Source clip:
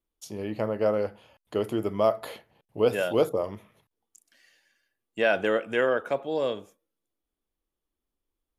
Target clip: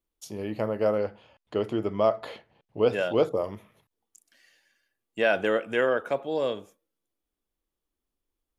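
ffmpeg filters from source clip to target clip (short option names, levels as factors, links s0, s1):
-filter_complex "[0:a]asettb=1/sr,asplit=3[s0][s1][s2];[s0]atrim=end=0.984[s3];[s1]atrim=start=0.98:end=3.33,asetpts=PTS-STARTPTS,afade=t=in:d=0.004:c=qsin,afade=t=out:st=2.346:d=0.004:c=qsin,lowpass=5400[s4];[s2]atrim=start=3.326[s5];[s3][s4]acrossfade=d=0.004:c1=hsin:c2=qsin[s6];[s6][s5]acrossfade=d=0.004:c1=qsin:c2=hsin"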